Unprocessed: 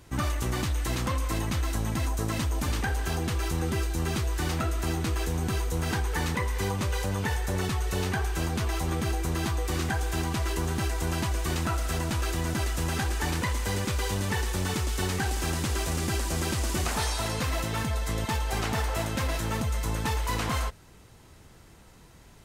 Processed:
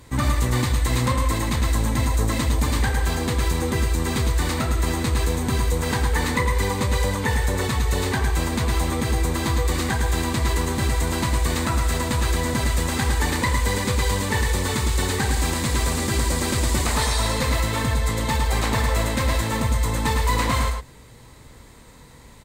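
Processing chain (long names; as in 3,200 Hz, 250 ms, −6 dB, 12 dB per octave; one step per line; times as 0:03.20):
EQ curve with evenly spaced ripples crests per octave 1, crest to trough 6 dB
single-tap delay 106 ms −5 dB
level +5 dB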